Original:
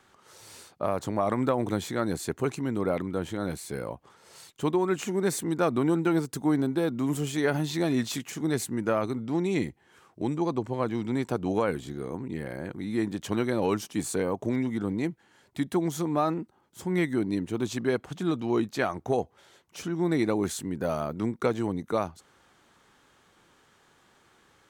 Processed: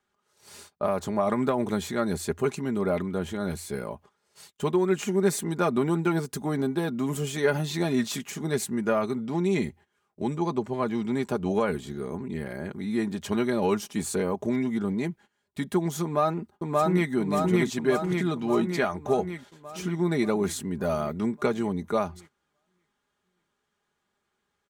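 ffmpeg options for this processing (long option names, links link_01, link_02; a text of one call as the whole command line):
ffmpeg -i in.wav -filter_complex "[0:a]asplit=2[link_01][link_02];[link_02]afade=type=in:start_time=16.03:duration=0.01,afade=type=out:start_time=17.11:duration=0.01,aecho=0:1:580|1160|1740|2320|2900|3480|4060|4640|5220|5800|6380:1|0.65|0.4225|0.274625|0.178506|0.116029|0.0754189|0.0490223|0.0318645|0.0207119|0.0134627[link_03];[link_01][link_03]amix=inputs=2:normalize=0,equalizer=frequency=84:width_type=o:width=0.24:gain=10.5,aecho=1:1:4.9:0.59,agate=range=-18dB:threshold=-48dB:ratio=16:detection=peak" out.wav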